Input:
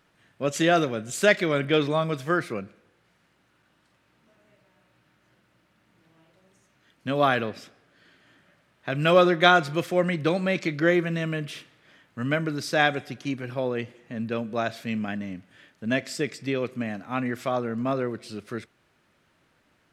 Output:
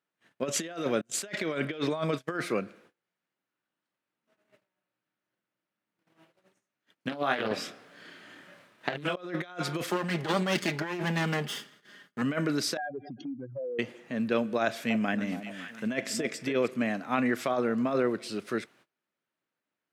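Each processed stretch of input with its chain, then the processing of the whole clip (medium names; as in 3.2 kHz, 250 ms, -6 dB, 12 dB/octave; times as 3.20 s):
1.01–2.38 s: gate -35 dBFS, range -34 dB + treble shelf 11 kHz -5 dB
7.09–9.17 s: compressor with a negative ratio -25 dBFS, ratio -0.5 + doubling 28 ms -2 dB + loudspeaker Doppler distortion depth 0.51 ms
9.90–12.22 s: comb filter that takes the minimum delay 0.62 ms + comb 4.9 ms, depth 47%
12.77–13.79 s: spectral contrast enhancement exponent 3.5 + compression, threshold -36 dBFS + distance through air 78 m
14.62–16.68 s: peaking EQ 4.3 kHz -5 dB 0.48 oct + echo whose repeats swap between lows and highs 280 ms, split 970 Hz, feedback 53%, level -11 dB + tape noise reduction on one side only encoder only
whole clip: gate -59 dBFS, range -25 dB; compressor with a negative ratio -27 dBFS, ratio -0.5; high-pass 200 Hz 12 dB/octave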